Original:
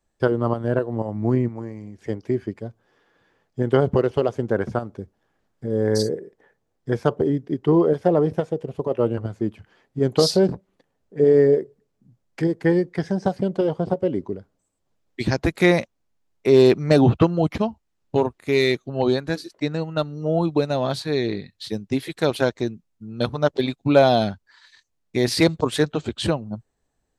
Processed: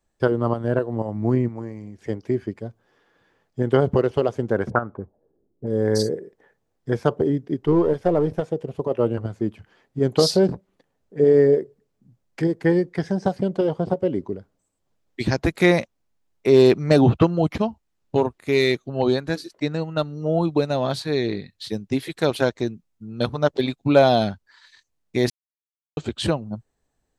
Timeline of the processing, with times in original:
4.7–5.67 envelope low-pass 350–1500 Hz up, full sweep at -25.5 dBFS
7.62–8.42 half-wave gain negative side -3 dB
25.3–25.97 mute

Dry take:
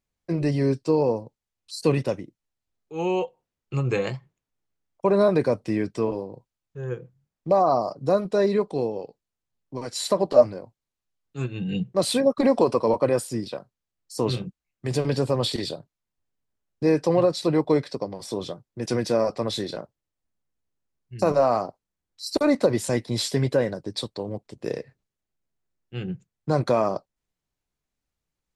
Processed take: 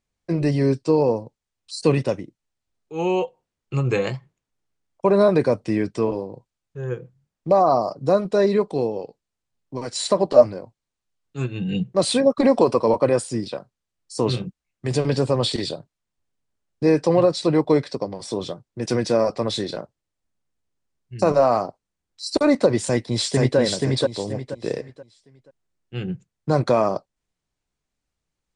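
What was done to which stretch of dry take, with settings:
22.85–23.58 echo throw 0.48 s, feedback 30%, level -2 dB
whole clip: steep low-pass 10000 Hz 96 dB/oct; gain +3 dB

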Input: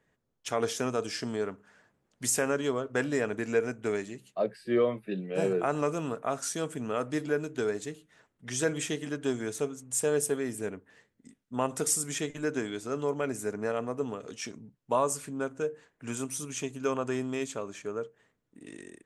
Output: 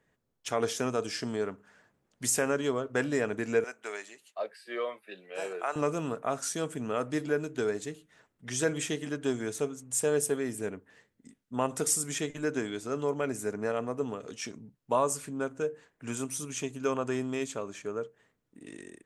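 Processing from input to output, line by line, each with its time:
3.64–5.76 HPF 750 Hz

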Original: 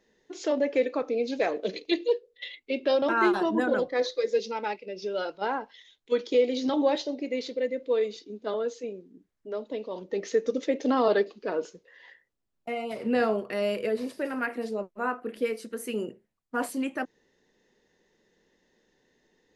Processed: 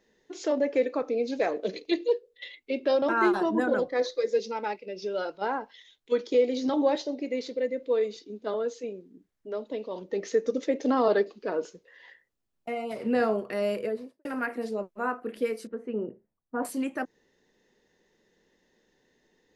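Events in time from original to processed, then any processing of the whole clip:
13.73–14.25 studio fade out
15.67–16.65 LPF 1100 Hz
whole clip: dynamic EQ 3100 Hz, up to -5 dB, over -47 dBFS, Q 1.4

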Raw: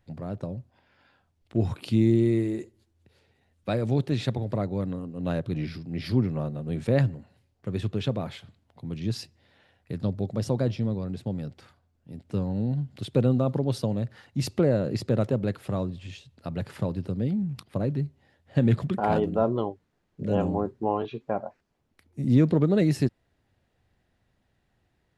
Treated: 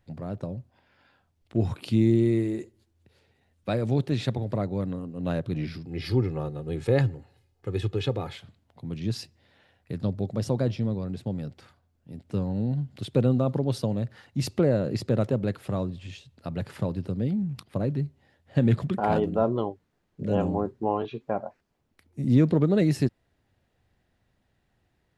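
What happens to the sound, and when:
5.85–8.33 comb 2.4 ms

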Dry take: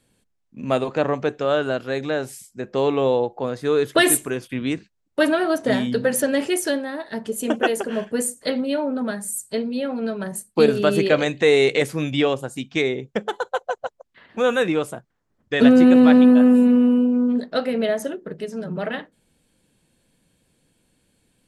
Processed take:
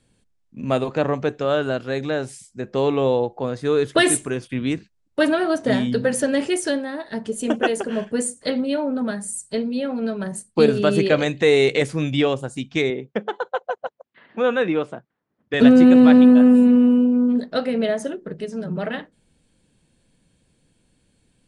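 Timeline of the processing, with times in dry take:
12.9–15.54 BPF 180–3200 Hz
whole clip: elliptic low-pass 10000 Hz, stop band 40 dB; low shelf 190 Hz +6.5 dB

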